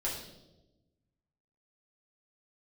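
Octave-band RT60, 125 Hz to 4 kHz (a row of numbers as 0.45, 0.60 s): 1.7, 1.5, 1.2, 0.80, 0.65, 0.85 s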